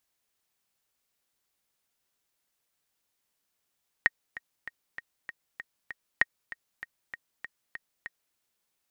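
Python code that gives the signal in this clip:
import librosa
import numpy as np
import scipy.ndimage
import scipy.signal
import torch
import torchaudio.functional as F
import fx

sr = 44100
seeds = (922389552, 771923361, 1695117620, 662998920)

y = fx.click_track(sr, bpm=195, beats=7, bars=2, hz=1870.0, accent_db=17.5, level_db=-7.5)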